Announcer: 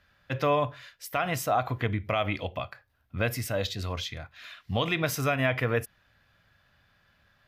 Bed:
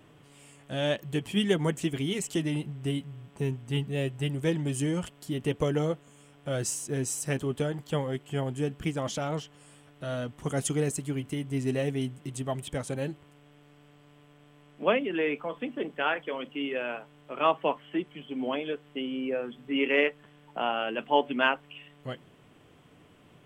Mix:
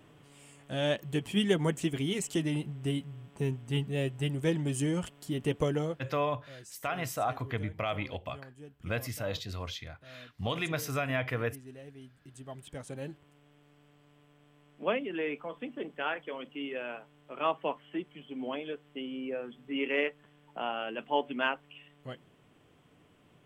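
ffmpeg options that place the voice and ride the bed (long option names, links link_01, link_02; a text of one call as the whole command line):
ffmpeg -i stem1.wav -i stem2.wav -filter_complex "[0:a]adelay=5700,volume=-5.5dB[link_01];[1:a]volume=12.5dB,afade=type=out:start_time=5.63:duration=0.61:silence=0.125893,afade=type=in:start_time=12.1:duration=1.26:silence=0.199526[link_02];[link_01][link_02]amix=inputs=2:normalize=0" out.wav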